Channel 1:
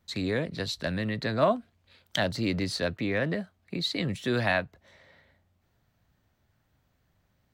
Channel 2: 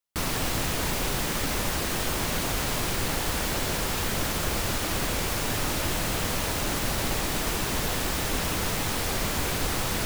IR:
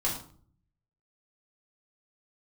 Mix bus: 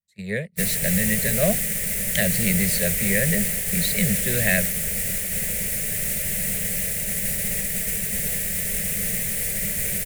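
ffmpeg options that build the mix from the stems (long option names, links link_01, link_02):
-filter_complex "[0:a]volume=3dB[link_01];[1:a]adelay=400,volume=-2.5dB[link_02];[link_01][link_02]amix=inputs=2:normalize=0,firequalizer=gain_entry='entry(110,0);entry(200,9);entry(280,-24);entry(410,-1);entry(580,1);entry(960,-24);entry(1900,8);entry(3300,-3);entry(4800,-2);entry(8700,14)':delay=0.05:min_phase=1,agate=range=-31dB:threshold=-23dB:ratio=16:detection=peak"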